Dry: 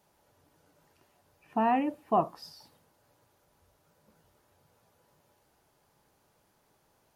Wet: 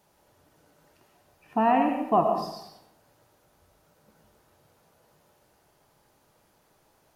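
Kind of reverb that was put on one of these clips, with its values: digital reverb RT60 0.83 s, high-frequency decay 0.7×, pre-delay 60 ms, DRR 4 dB; gain +3.5 dB

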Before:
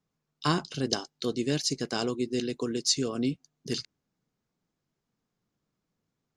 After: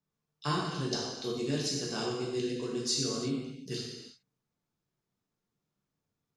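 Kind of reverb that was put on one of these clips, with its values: non-linear reverb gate 0.39 s falling, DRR -4.5 dB; gain -9 dB

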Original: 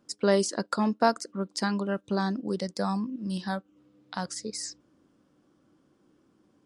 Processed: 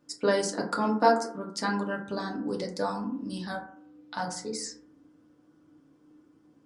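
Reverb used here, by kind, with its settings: FDN reverb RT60 0.56 s, low-frequency decay 1.1×, high-frequency decay 0.35×, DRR -1.5 dB; gain -3 dB

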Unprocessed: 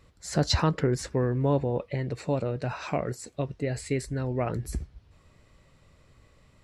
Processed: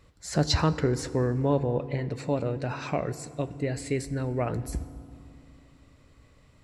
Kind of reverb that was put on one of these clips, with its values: FDN reverb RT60 2.5 s, low-frequency decay 1.55×, high-frequency decay 0.55×, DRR 14 dB

